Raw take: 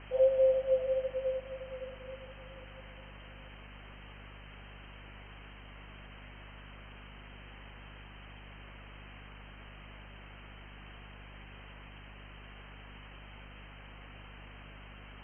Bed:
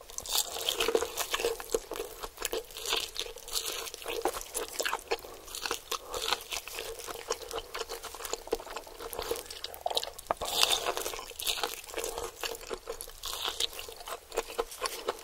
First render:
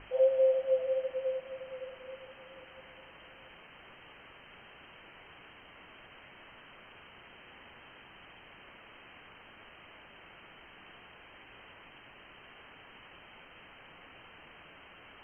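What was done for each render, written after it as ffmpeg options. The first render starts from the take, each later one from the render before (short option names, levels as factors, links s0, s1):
-af "bandreject=f=50:t=h:w=6,bandreject=f=100:t=h:w=6,bandreject=f=150:t=h:w=6,bandreject=f=200:t=h:w=6,bandreject=f=250:t=h:w=6"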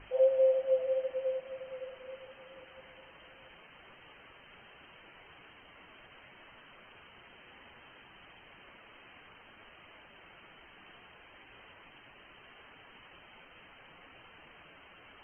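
-af "afftdn=nr=6:nf=-55"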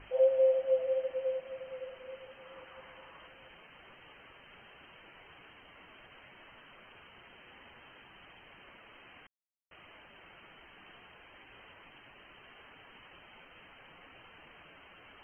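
-filter_complex "[0:a]asettb=1/sr,asplit=3[s0][s1][s2];[s0]atrim=end=2.454[s3];[s1]atrim=start=2.45:end=3.27,asetpts=PTS-STARTPTS,afade=t=in:d=0.004:c=qsin,afade=t=out:st=0.816:d=0.004:c=qsin,equalizer=f=1100:t=o:w=0.83:g=6[s4];[s2]atrim=start=3.266[s5];[s3][s4]acrossfade=d=0.004:c1=hsin:c2=qsin[s6];[s6][s5]acrossfade=d=0.004:c1=qsin:c2=hsin,asplit=3[s7][s8][s9];[s7]atrim=end=9.27,asetpts=PTS-STARTPTS,afade=t=out:st=9.266:d=0.004:c=hsin[s10];[s8]atrim=start=9.27:end=9.71,asetpts=PTS-STARTPTS,volume=0[s11];[s9]atrim=start=9.71,asetpts=PTS-STARTPTS,afade=t=in:d=0.004:c=hsin[s12];[s10][s11][s12]concat=n=3:v=0:a=1"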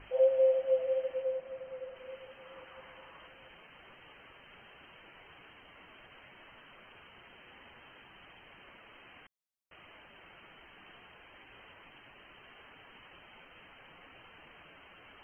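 -filter_complex "[0:a]asettb=1/sr,asplit=3[s0][s1][s2];[s0]atrim=end=1.224[s3];[s1]atrim=start=1.22:end=1.96,asetpts=PTS-STARTPTS,afade=t=in:d=0.004:c=qsin,afade=t=out:st=0.736:d=0.004:c=qsin,lowpass=f=1900:p=1[s4];[s2]atrim=start=1.956[s5];[s3][s4]acrossfade=d=0.004:c1=hsin:c2=qsin[s6];[s6][s5]acrossfade=d=0.004:c1=qsin:c2=hsin"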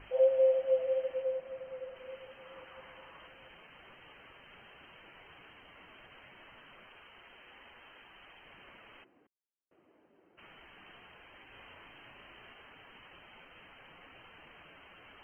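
-filter_complex "[0:a]asettb=1/sr,asplit=3[s0][s1][s2];[s0]atrim=end=6.874[s3];[s1]atrim=start=6.87:end=8.45,asetpts=PTS-STARTPTS,afade=t=in:d=0.004:c=qsin,afade=t=out:st=1.576:d=0.004:c=qsin,equalizer=f=130:w=0.65:g=-7.5[s4];[s2]atrim=start=8.446[s5];[s3][s4]acrossfade=d=0.004:c1=hsin:c2=qsin[s6];[s6][s5]acrossfade=d=0.004:c1=qsin:c2=hsin,asplit=3[s7][s8][s9];[s7]afade=t=out:st=9.03:d=0.02[s10];[s8]bandpass=f=330:t=q:w=1.9,afade=t=in:st=9.03:d=0.02,afade=t=out:st=10.37:d=0.02[s11];[s9]afade=t=in:st=10.37:d=0.02[s12];[s10][s11][s12]amix=inputs=3:normalize=0,asettb=1/sr,asplit=3[s13][s14][s15];[s13]atrim=end=11.504[s16];[s14]atrim=start=11.5:end=12.53,asetpts=PTS-STARTPTS,afade=t=in:d=0.004:c=qsin,afade=t=out:st=1.026:d=0.004:c=qsin,asplit=2[s17][s18];[s18]adelay=35,volume=0.631[s19];[s17][s19]amix=inputs=2:normalize=0,atrim=end_sample=45423[s20];[s15]atrim=start=12.526[s21];[s16][s20]acrossfade=d=0.004:c1=hsin:c2=qsin[s22];[s22][s21]acrossfade=d=0.004:c1=qsin:c2=hsin"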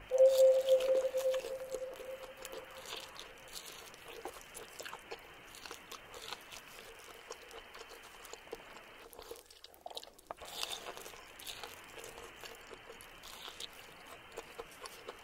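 -filter_complex "[1:a]volume=0.178[s0];[0:a][s0]amix=inputs=2:normalize=0"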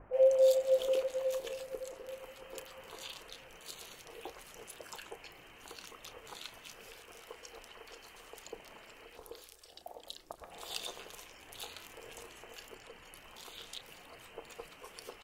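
-filter_complex "[0:a]asplit=2[s0][s1];[s1]adelay=32,volume=0.224[s2];[s0][s2]amix=inputs=2:normalize=0,acrossover=split=1400[s3][s4];[s4]adelay=130[s5];[s3][s5]amix=inputs=2:normalize=0"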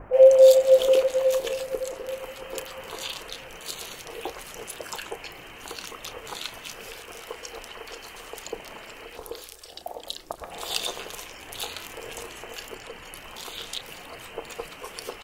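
-af "volume=3.98"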